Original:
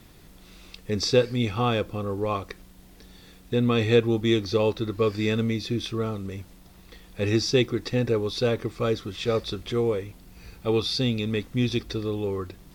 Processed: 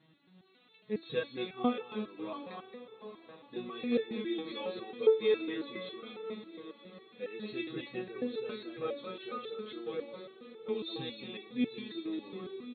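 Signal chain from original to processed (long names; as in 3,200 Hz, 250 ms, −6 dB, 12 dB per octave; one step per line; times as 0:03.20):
0:05.00–0:05.66: comb filter 6.9 ms, depth 98%
single-tap delay 222 ms −5 dB
brick-wall band-pass 120–4,300 Hz
on a send: feedback delay with all-pass diffusion 754 ms, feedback 52%, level −12 dB
on the sum: step-sequenced resonator 7.3 Hz 160–440 Hz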